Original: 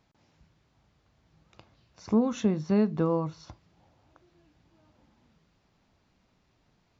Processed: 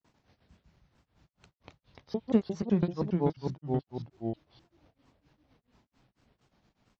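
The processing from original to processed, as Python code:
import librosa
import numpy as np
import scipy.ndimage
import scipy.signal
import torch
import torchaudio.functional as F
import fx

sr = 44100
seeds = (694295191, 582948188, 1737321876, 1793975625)

y = fx.block_reorder(x, sr, ms=97.0, group=2)
y = fx.granulator(y, sr, seeds[0], grain_ms=161.0, per_s=4.4, spray_ms=12.0, spread_st=3)
y = fx.echo_pitch(y, sr, ms=90, semitones=-2, count=2, db_per_echo=-3.0)
y = y * librosa.db_to_amplitude(2.0)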